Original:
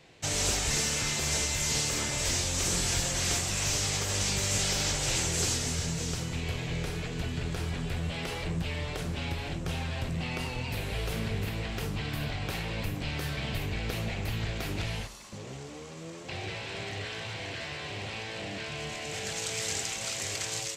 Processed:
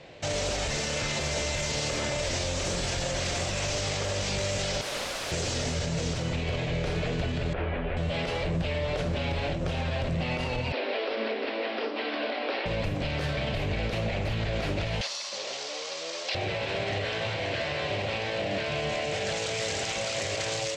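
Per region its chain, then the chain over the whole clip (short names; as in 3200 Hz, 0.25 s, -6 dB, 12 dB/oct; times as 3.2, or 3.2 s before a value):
4.81–5.32 notches 50/100/150/200/250/300 Hz + wrapped overs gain 30.5 dB
7.53–7.97 LPF 2600 Hz 24 dB/oct + bell 130 Hz -14.5 dB 0.81 oct
10.72–12.66 Chebyshev high-pass 230 Hz, order 8 + air absorption 62 m + careless resampling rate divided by 4×, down none, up filtered
15.01–16.35 HPF 610 Hz + bell 4900 Hz +14.5 dB 1.5 oct
whole clip: LPF 5000 Hz 12 dB/oct; bell 580 Hz +10.5 dB 0.42 oct; limiter -27.5 dBFS; gain +6.5 dB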